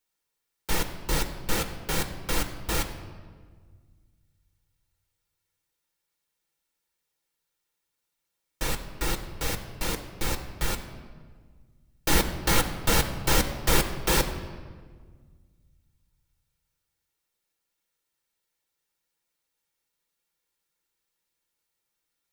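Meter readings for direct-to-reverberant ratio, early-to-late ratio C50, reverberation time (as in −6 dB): 5.0 dB, 10.0 dB, 1.6 s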